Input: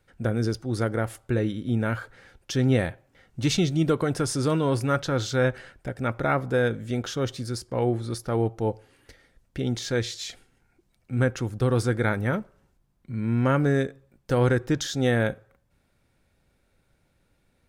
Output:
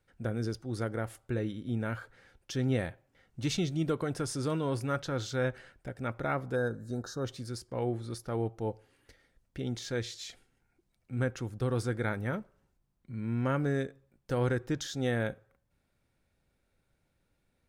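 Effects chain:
gain on a spectral selection 0:06.55–0:07.25, 1,800–3,700 Hz −23 dB
level −8 dB

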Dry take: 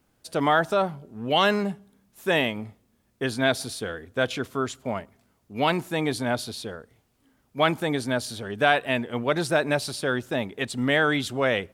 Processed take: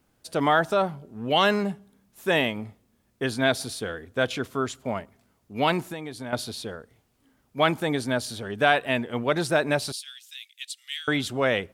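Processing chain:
0:05.83–0:06.33: downward compressor 6 to 1, threshold −33 dBFS, peak gain reduction 12 dB
0:09.92–0:11.08: inverse Chebyshev high-pass filter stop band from 500 Hz, stop band 80 dB

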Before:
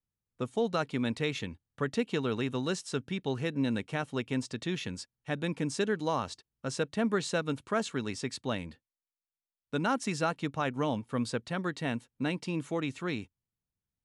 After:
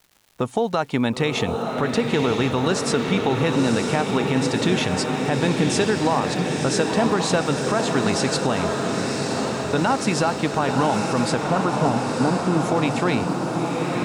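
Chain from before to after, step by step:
parametric band 820 Hz +8.5 dB 0.84 octaves
downward compressor, threshold −32 dBFS, peak gain reduction 11.5 dB
surface crackle 330 per second −57 dBFS
0:11.43–0:12.60: linear-phase brick-wall low-pass 1,500 Hz
feedback delay with all-pass diffusion 981 ms, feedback 69%, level −4 dB
boost into a limiter +23.5 dB
level −8.5 dB

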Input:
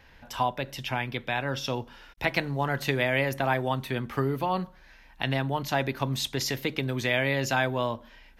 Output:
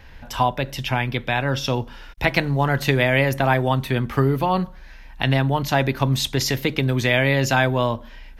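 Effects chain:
low-shelf EQ 110 Hz +9.5 dB
level +6.5 dB

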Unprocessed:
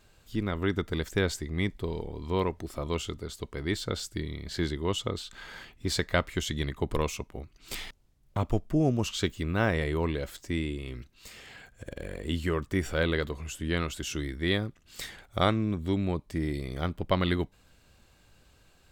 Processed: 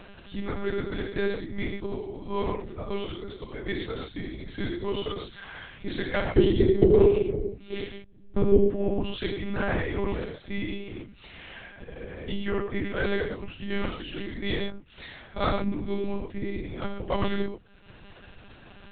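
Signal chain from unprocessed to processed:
0:06.24–0:08.57: low shelf with overshoot 550 Hz +9.5 dB, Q 3
mains-hum notches 50/100/150/200/250/300/350 Hz
upward compression, threshold −35 dBFS
tape wow and flutter 27 cents
high-frequency loss of the air 75 metres
reverb whose tail is shaped and stops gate 150 ms flat, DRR 0 dB
one-pitch LPC vocoder at 8 kHz 200 Hz
level −2.5 dB

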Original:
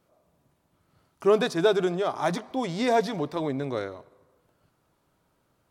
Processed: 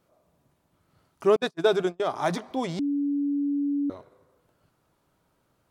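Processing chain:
0:01.36–0:02.00: noise gate −24 dBFS, range −40 dB
0:02.79–0:03.90: beep over 285 Hz −23 dBFS

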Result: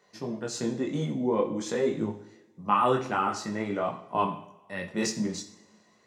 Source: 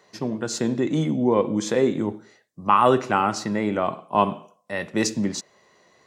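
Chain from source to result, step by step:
multi-voice chorus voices 2, 0.49 Hz, delay 20 ms, depth 3.5 ms
coupled-rooms reverb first 0.53 s, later 1.9 s, from −18 dB, DRR 7 dB
level −4 dB

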